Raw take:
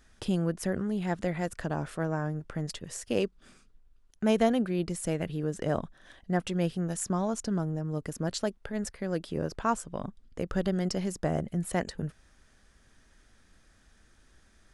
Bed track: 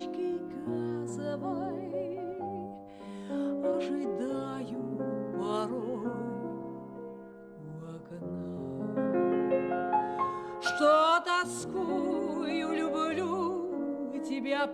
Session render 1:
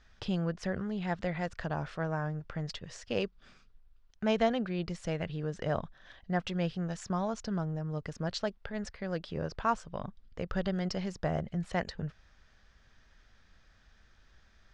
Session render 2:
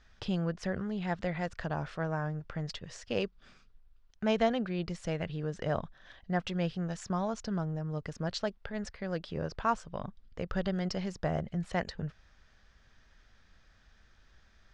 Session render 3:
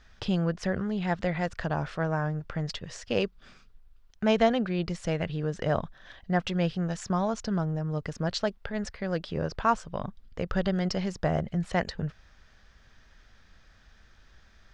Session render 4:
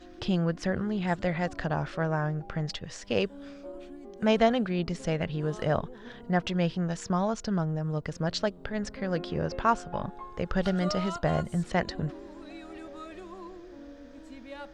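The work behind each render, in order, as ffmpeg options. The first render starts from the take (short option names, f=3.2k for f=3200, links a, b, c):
-af "lowpass=f=5.4k:w=0.5412,lowpass=f=5.4k:w=1.3066,equalizer=f=300:t=o:w=1.2:g=-8"
-af anull
-af "volume=5dB"
-filter_complex "[1:a]volume=-12.5dB[a];[0:a][a]amix=inputs=2:normalize=0"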